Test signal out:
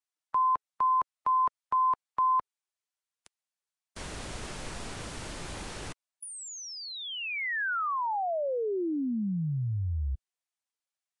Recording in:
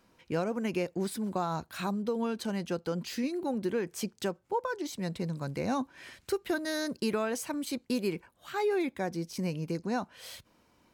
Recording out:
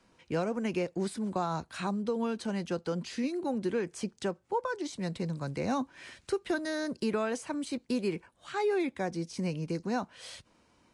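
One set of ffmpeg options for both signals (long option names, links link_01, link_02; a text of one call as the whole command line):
ffmpeg -i in.wav -filter_complex "[0:a]acrossover=split=430|520|2200[link_01][link_02][link_03][link_04];[link_04]acompressor=threshold=-42dB:ratio=6[link_05];[link_01][link_02][link_03][link_05]amix=inputs=4:normalize=0" -ar 22050 -c:a libvorbis -b:a 48k out.ogg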